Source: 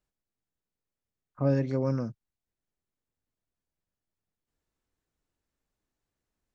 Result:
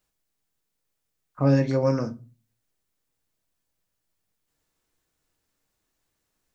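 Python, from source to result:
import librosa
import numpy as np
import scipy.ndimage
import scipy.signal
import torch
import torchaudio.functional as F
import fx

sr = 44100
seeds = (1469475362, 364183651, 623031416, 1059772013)

y = fx.tilt_eq(x, sr, slope=1.5)
y = fx.room_shoebox(y, sr, seeds[0], volume_m3=130.0, walls='furnished', distance_m=0.58)
y = y * librosa.db_to_amplitude(7.0)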